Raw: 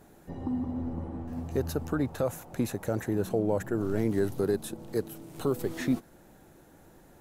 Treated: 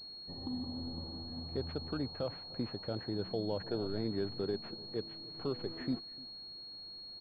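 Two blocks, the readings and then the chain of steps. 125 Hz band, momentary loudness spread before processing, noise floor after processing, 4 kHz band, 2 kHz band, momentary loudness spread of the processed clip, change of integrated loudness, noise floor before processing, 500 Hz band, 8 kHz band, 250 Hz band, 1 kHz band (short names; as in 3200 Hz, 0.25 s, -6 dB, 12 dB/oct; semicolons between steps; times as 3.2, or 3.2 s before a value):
-8.5 dB, 8 LU, -49 dBFS, +9.0 dB, -10.5 dB, 9 LU, -8.0 dB, -56 dBFS, -8.0 dB, under -30 dB, -8.5 dB, -8.5 dB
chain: echo 0.3 s -21.5 dB; spectral gain 3.66–3.87, 390–1000 Hz +7 dB; pulse-width modulation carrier 4300 Hz; gain -8.5 dB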